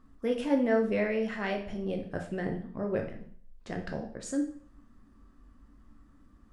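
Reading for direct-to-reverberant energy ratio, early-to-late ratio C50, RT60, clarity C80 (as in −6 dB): 2.0 dB, 8.0 dB, 0.55 s, 12.0 dB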